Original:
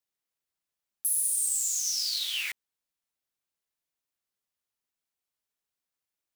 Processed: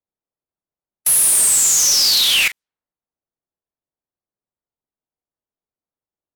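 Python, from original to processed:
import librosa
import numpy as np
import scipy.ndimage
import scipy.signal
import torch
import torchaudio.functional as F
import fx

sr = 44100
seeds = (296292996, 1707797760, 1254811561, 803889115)

y = fx.leveller(x, sr, passes=5, at=(1.06, 2.48))
y = fx.env_lowpass(y, sr, base_hz=800.0, full_db=-23.5)
y = y * librosa.db_to_amplitude(5.0)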